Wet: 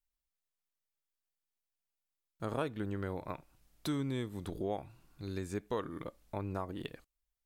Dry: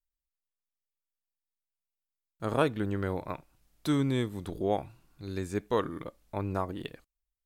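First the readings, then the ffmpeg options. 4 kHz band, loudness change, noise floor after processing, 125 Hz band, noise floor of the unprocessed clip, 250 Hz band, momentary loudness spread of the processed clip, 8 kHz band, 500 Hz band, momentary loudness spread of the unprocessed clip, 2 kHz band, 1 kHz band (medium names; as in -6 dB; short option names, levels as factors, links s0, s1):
-6.0 dB, -7.5 dB, under -85 dBFS, -6.5 dB, under -85 dBFS, -6.5 dB, 10 LU, -4.0 dB, -7.5 dB, 14 LU, -7.5 dB, -7.5 dB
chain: -af "acompressor=threshold=0.0126:ratio=2"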